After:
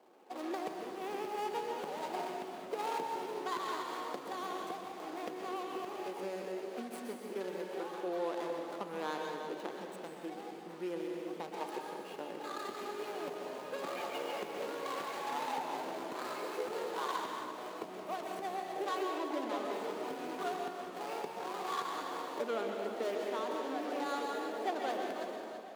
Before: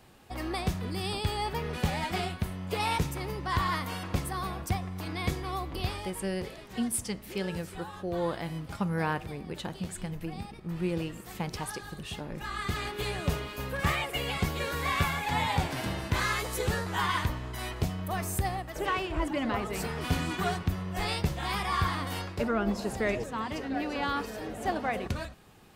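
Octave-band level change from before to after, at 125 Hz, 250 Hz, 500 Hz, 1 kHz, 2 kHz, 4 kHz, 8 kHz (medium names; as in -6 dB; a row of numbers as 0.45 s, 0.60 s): -27.5 dB, -9.0 dB, -2.0 dB, -4.5 dB, -11.0 dB, -10.5 dB, -12.5 dB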